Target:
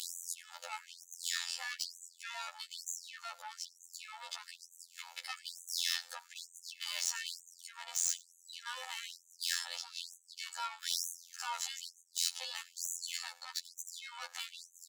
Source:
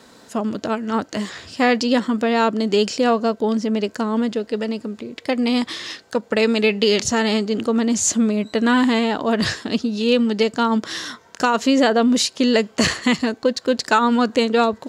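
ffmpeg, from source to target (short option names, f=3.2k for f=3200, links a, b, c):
-af "areverse,acompressor=threshold=-29dB:ratio=16,areverse,highshelf=f=7.2k:g=11.5,aeval=exprs='(tanh(50.1*val(0)+0.2)-tanh(0.2))/50.1':c=same,alimiter=level_in=18.5dB:limit=-24dB:level=0:latency=1:release=362,volume=-18.5dB,equalizer=f=460:t=o:w=1.8:g=-10.5,aecho=1:1:2.3:0.82,aecho=1:1:93:0.075,afftfilt=real='hypot(re,im)*cos(PI*b)':imag='0':win_size=2048:overlap=0.75,afftfilt=real='re*gte(b*sr/1024,480*pow(6100/480,0.5+0.5*sin(2*PI*1.1*pts/sr)))':imag='im*gte(b*sr/1024,480*pow(6100/480,0.5+0.5*sin(2*PI*1.1*pts/sr)))':win_size=1024:overlap=0.75,volume=15dB"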